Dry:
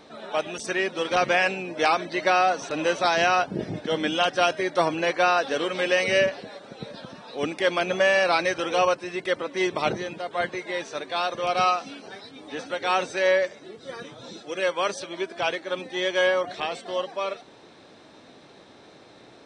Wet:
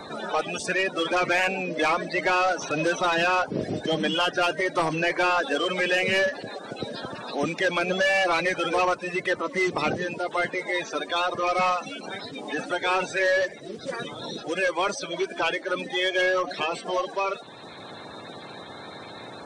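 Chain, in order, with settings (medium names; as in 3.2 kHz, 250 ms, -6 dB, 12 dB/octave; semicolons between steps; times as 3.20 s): coarse spectral quantiser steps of 30 dB; saturation -18.5 dBFS, distortion -13 dB; three bands compressed up and down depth 40%; trim +2.5 dB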